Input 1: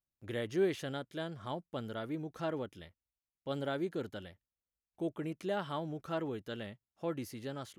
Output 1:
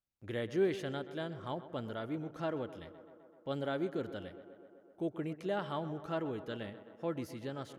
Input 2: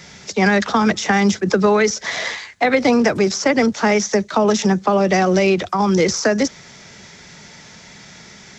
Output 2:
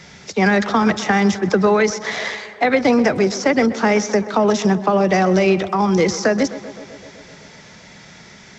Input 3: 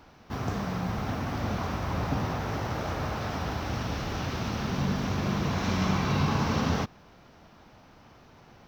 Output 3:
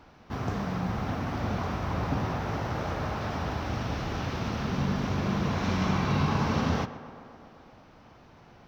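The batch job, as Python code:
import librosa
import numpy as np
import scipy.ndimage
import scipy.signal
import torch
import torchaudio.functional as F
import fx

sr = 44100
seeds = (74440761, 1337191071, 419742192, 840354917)

p1 = fx.high_shelf(x, sr, hz=6100.0, db=-8.0)
y = p1 + fx.echo_tape(p1, sr, ms=128, feedback_pct=80, wet_db=-14, lp_hz=2800.0, drive_db=5.0, wow_cents=12, dry=0)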